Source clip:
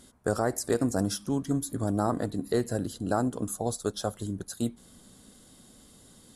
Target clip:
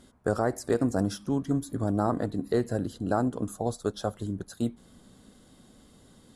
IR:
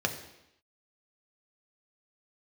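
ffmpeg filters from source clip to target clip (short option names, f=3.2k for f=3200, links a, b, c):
-af "highshelf=f=4.8k:g=-11.5,volume=1dB"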